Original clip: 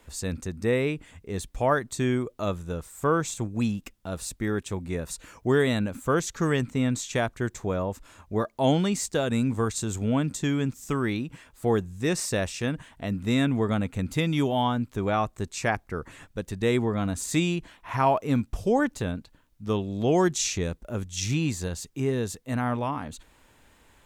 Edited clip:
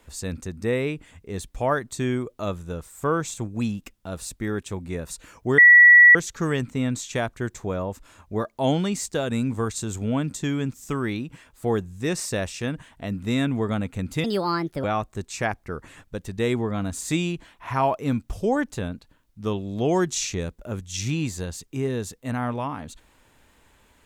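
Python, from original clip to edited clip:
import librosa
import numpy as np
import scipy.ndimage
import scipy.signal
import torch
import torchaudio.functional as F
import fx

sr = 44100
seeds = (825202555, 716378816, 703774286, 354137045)

y = fx.edit(x, sr, fx.bleep(start_s=5.58, length_s=0.57, hz=1940.0, db=-7.5),
    fx.speed_span(start_s=14.24, length_s=0.83, speed=1.39), tone=tone)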